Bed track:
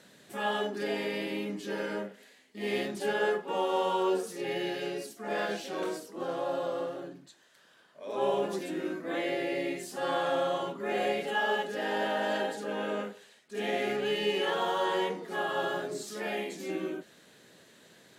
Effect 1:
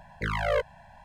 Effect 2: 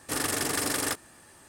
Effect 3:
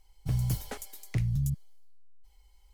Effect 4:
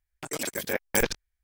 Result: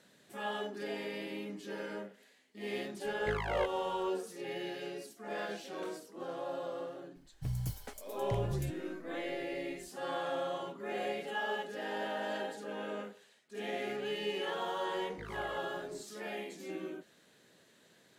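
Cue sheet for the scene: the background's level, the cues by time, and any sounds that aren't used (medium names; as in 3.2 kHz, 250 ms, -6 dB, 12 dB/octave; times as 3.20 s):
bed track -7 dB
3.05 s: add 1 -8 dB
7.16 s: add 3 -7.5 dB
14.97 s: add 1 -15 dB + compression, threshold -27 dBFS
not used: 2, 4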